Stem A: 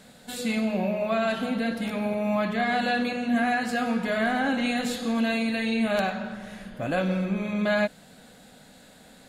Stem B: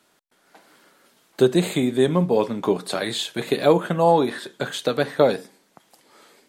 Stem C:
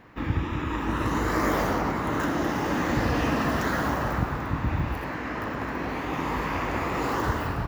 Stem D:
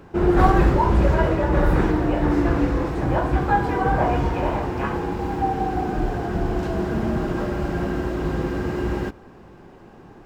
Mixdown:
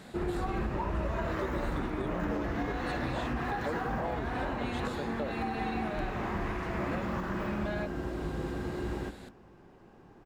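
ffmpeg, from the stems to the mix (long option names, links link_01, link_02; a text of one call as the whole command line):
ffmpeg -i stem1.wav -i stem2.wav -i stem3.wav -i stem4.wav -filter_complex "[0:a]highshelf=frequency=5800:gain=-8.5,acompressor=threshold=-45dB:ratio=2,volume=1dB[link_01];[1:a]lowpass=frequency=4000:poles=1,volume=-15.5dB[link_02];[2:a]equalizer=frequency=1600:width=0.5:gain=10.5,volume=-17dB[link_03];[3:a]volume=-10.5dB,asplit=2[link_04][link_05];[link_05]volume=-15.5dB,aecho=0:1:207:1[link_06];[link_01][link_02][link_03][link_04][link_06]amix=inputs=5:normalize=0,alimiter=limit=-23.5dB:level=0:latency=1:release=208" out.wav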